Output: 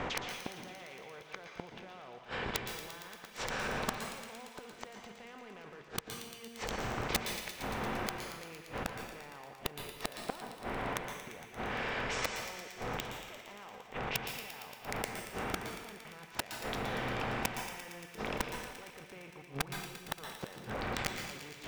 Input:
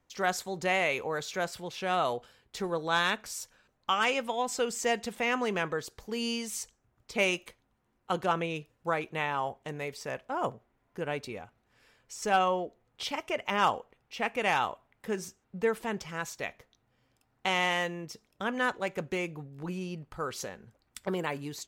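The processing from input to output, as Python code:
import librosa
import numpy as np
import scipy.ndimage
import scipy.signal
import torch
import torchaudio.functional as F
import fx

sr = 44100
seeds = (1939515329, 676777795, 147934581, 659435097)

y = fx.bin_compress(x, sr, power=0.6)
y = scipy.signal.sosfilt(scipy.signal.butter(2, 3100.0, 'lowpass', fs=sr, output='sos'), y)
y = fx.low_shelf(y, sr, hz=110.0, db=5.0)
y = fx.level_steps(y, sr, step_db=18)
y = np.clip(y, -10.0 ** (-30.0 / 20.0), 10.0 ** (-30.0 / 20.0))
y = fx.gate_flip(y, sr, shuts_db=-32.0, range_db=-31)
y = (np.mod(10.0 ** (37.5 / 20.0) * y + 1.0, 2.0) - 1.0) / 10.0 ** (37.5 / 20.0)
y = fx.echo_wet_highpass(y, sr, ms=115, feedback_pct=81, hz=1900.0, wet_db=-10.5)
y = fx.rev_plate(y, sr, seeds[0], rt60_s=0.94, hf_ratio=1.0, predelay_ms=115, drr_db=4.5)
y = F.gain(torch.from_numpy(y), 16.5).numpy()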